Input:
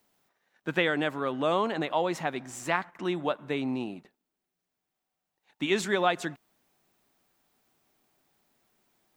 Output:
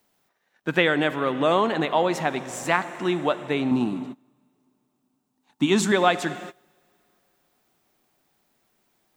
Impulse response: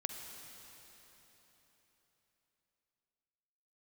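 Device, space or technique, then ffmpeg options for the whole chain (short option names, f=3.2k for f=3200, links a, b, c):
keyed gated reverb: -filter_complex "[0:a]asplit=3[a][b][c];[1:a]atrim=start_sample=2205[d];[b][d]afir=irnorm=-1:irlink=0[e];[c]apad=whole_len=404389[f];[e][f]sidechaingate=range=-23dB:threshold=-57dB:ratio=16:detection=peak,volume=-4dB[g];[a][g]amix=inputs=2:normalize=0,asettb=1/sr,asplit=3[h][i][j];[h]atrim=end=3.714[k];[i]atrim=start=3.71:end=5.92,asetpts=PTS-STARTPTS,afade=t=in:d=0.004:c=qsin,afade=t=out:st=2.206:d=0.004:c=qsin,equalizer=f=125:t=o:w=1:g=4,equalizer=f=250:t=o:w=1:g=7,equalizer=f=500:t=o:w=1:g=-7,equalizer=f=1k:t=o:w=1:g=7,equalizer=f=2k:t=o:w=1:g=-7,equalizer=f=8k:t=o:w=1:g=4[l];[j]atrim=start=5.916[m];[k][l]acrossfade=d=0.004:c1=hsin:c2=qsin[n];[n][m]acrossfade=d=0.004:c1=qsin:c2=hsin,volume=2dB"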